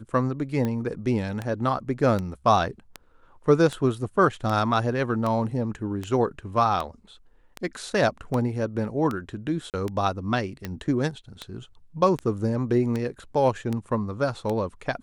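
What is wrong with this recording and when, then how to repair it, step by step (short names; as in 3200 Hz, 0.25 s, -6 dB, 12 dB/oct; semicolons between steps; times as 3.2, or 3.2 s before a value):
tick 78 rpm -16 dBFS
9.7–9.74 gap 38 ms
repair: de-click; interpolate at 9.7, 38 ms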